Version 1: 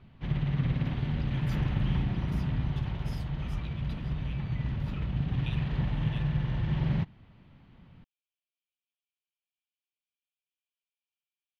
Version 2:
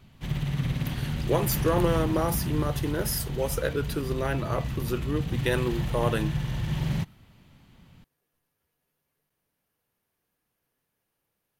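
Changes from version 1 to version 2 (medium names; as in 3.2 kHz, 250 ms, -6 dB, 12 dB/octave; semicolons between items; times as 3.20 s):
speech: remove rippled Chebyshev high-pass 2.3 kHz, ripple 6 dB; master: remove distance through air 300 m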